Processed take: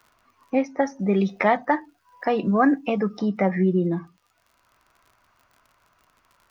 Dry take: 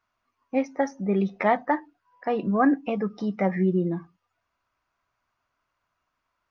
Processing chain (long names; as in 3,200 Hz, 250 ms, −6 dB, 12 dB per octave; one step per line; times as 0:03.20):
0:00.99–0:03.19: high-shelf EQ 3,900 Hz +12 dB
surface crackle 56 per second −56 dBFS
multiband upward and downward compressor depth 40%
level +2.5 dB